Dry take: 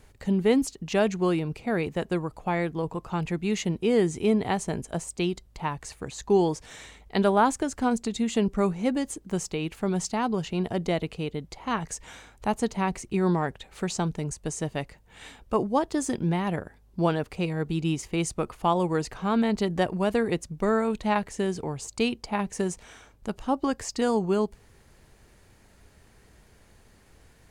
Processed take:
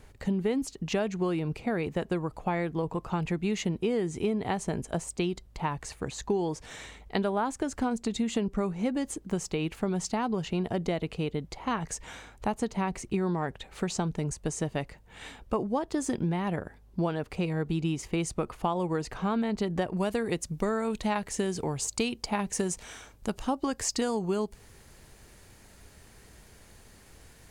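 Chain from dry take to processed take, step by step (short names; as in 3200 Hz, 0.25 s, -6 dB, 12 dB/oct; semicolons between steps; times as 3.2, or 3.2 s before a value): high shelf 3800 Hz -3.5 dB, from 19.97 s +6 dB; compressor 6:1, threshold -27 dBFS, peak gain reduction 11 dB; gain +2 dB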